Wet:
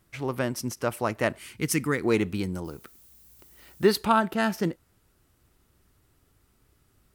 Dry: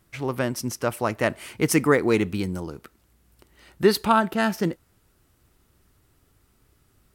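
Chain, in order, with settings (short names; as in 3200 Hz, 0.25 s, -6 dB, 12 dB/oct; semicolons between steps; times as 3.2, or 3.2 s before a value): 1.38–2.04 bell 670 Hz -12 dB 1.7 oct; 2.64–3.92 added noise violet -53 dBFS; ending taper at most 560 dB/s; gain -2.5 dB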